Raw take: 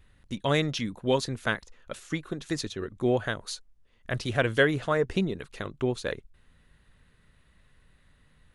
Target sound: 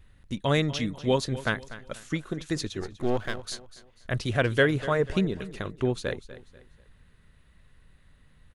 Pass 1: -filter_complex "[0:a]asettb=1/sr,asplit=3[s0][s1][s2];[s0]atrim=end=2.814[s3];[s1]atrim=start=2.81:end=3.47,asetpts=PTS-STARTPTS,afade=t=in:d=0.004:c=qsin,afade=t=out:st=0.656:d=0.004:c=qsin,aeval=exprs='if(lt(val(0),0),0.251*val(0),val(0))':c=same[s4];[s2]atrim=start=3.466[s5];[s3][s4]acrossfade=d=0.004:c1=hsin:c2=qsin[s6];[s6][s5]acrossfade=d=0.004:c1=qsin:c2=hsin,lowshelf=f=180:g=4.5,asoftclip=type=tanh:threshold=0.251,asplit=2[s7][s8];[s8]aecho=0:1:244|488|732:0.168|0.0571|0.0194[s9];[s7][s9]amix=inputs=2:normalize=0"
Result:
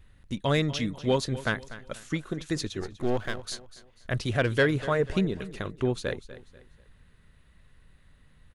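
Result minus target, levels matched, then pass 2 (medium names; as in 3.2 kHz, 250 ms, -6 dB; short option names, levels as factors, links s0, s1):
saturation: distortion +20 dB
-filter_complex "[0:a]asettb=1/sr,asplit=3[s0][s1][s2];[s0]atrim=end=2.814[s3];[s1]atrim=start=2.81:end=3.47,asetpts=PTS-STARTPTS,afade=t=in:d=0.004:c=qsin,afade=t=out:st=0.656:d=0.004:c=qsin,aeval=exprs='if(lt(val(0),0),0.251*val(0),val(0))':c=same[s4];[s2]atrim=start=3.466[s5];[s3][s4]acrossfade=d=0.004:c1=hsin:c2=qsin[s6];[s6][s5]acrossfade=d=0.004:c1=qsin:c2=hsin,lowshelf=f=180:g=4.5,asoftclip=type=tanh:threshold=0.944,asplit=2[s7][s8];[s8]aecho=0:1:244|488|732:0.168|0.0571|0.0194[s9];[s7][s9]amix=inputs=2:normalize=0"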